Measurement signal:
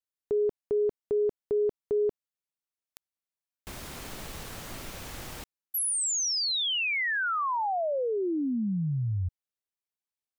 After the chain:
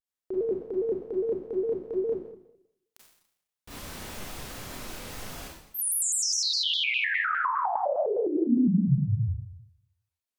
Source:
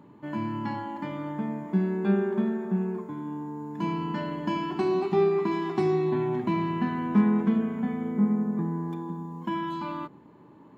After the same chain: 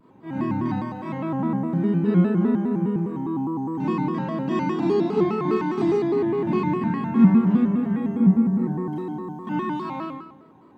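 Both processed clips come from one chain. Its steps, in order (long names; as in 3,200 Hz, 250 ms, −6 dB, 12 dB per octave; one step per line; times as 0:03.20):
dynamic equaliser 180 Hz, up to +6 dB, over −39 dBFS, Q 1
four-comb reverb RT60 0.8 s, combs from 27 ms, DRR −7 dB
pitch modulation by a square or saw wave square 4.9 Hz, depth 160 cents
level −6.5 dB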